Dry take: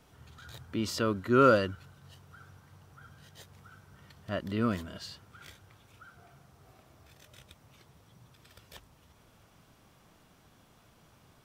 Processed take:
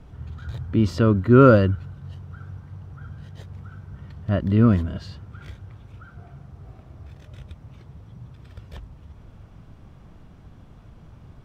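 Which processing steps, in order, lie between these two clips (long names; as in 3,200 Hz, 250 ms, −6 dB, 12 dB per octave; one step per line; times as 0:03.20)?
RIAA equalisation playback
level +5.5 dB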